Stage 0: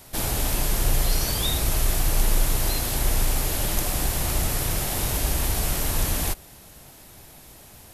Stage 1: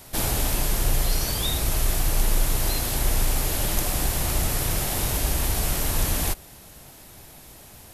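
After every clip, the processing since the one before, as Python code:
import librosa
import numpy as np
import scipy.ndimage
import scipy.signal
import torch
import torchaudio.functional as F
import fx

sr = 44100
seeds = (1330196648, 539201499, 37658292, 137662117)

y = fx.rider(x, sr, range_db=10, speed_s=0.5)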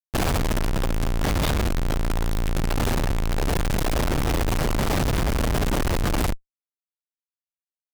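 y = fx.schmitt(x, sr, flips_db=-23.0)
y = y * librosa.db_to_amplitude(2.0)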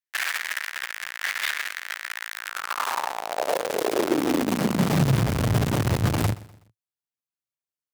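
y = fx.echo_feedback(x, sr, ms=124, feedback_pct=39, wet_db=-19.5)
y = fx.filter_sweep_highpass(y, sr, from_hz=1800.0, to_hz=110.0, start_s=2.3, end_s=5.3, q=3.7)
y = y * librosa.db_to_amplitude(-1.5)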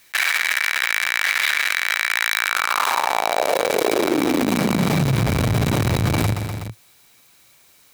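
y = fx.small_body(x, sr, hz=(2300.0, 3900.0), ring_ms=35, db=11)
y = fx.env_flatten(y, sr, amount_pct=70)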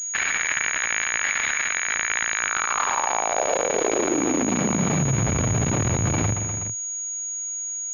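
y = fx.pwm(x, sr, carrier_hz=6700.0)
y = y * librosa.db_to_amplitude(-3.5)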